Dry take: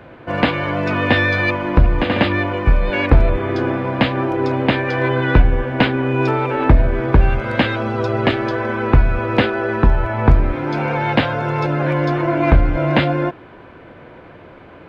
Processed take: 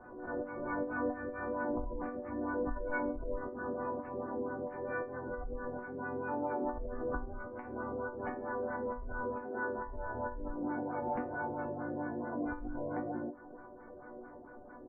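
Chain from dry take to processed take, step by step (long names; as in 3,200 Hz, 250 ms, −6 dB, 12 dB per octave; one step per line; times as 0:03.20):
downward compressor 4 to 1, threshold −25 dBFS, peak gain reduction 16 dB
auto-filter low-pass sine 4.5 Hz 530–1,500 Hz
echo ahead of the sound 74 ms −18 dB
gate on every frequency bin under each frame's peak −25 dB strong
pitch-shifted copies added −7 semitones −4 dB, −4 semitones −14 dB, −3 semitones −16 dB
high-shelf EQ 2,100 Hz −10 dB
volume swells 134 ms
resonators tuned to a chord B3 minor, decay 0.27 s
background raised ahead of every attack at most 57 dB per second
level +3.5 dB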